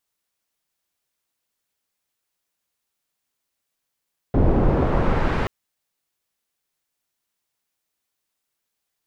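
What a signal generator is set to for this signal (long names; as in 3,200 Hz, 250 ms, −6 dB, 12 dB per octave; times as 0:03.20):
filter sweep on noise pink, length 1.13 s lowpass, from 410 Hz, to 2,000 Hz, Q 0.79, exponential, gain ramp −9.5 dB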